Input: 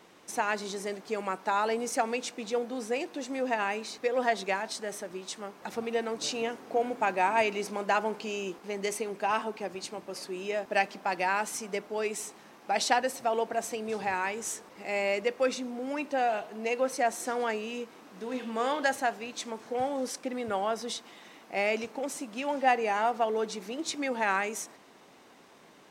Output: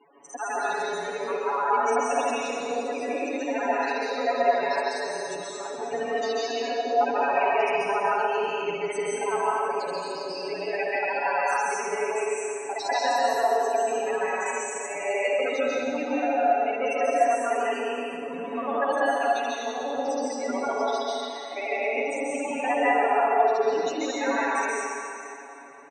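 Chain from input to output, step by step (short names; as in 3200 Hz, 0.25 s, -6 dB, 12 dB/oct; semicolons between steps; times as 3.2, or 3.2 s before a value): local time reversal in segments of 49 ms; low shelf 250 Hz -8.5 dB; comb 7.1 ms, depth 95%; in parallel at +0.5 dB: compressor, threshold -39 dBFS, peak gain reduction 19.5 dB; on the sum: loudest bins only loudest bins 16; on a send: band-limited delay 0.467 s, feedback 47%, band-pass 1500 Hz, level -15 dB; on the sum: plate-style reverb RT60 2.2 s, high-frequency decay 0.95×, pre-delay 0.12 s, DRR -7.5 dB; gain -5.5 dB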